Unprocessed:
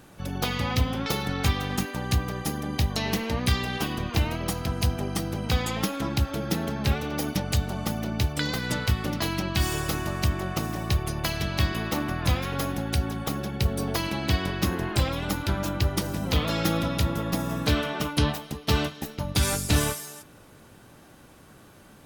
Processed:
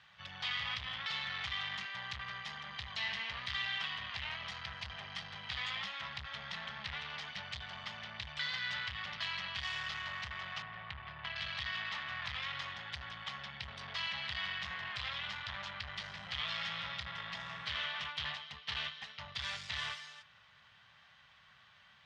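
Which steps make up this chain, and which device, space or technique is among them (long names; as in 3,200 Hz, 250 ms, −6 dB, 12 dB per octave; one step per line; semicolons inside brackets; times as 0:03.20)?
0:10.62–0:11.36: high-frequency loss of the air 420 metres
scooped metal amplifier (tube saturation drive 31 dB, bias 0.7; loudspeaker in its box 100–4,300 Hz, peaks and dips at 100 Hz −3 dB, 330 Hz −9 dB, 490 Hz −6 dB, 1,100 Hz +4 dB, 1,900 Hz +8 dB, 3,200 Hz +6 dB; guitar amp tone stack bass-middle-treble 10-0-10)
level +1 dB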